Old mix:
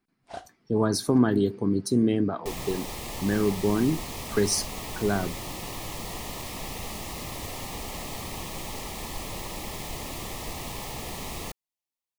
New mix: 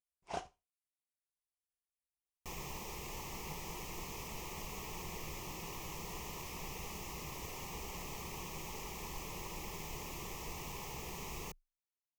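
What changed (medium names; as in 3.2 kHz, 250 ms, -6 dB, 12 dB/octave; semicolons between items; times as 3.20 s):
speech: muted; second sound -10.0 dB; master: add rippled EQ curve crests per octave 0.76, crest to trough 8 dB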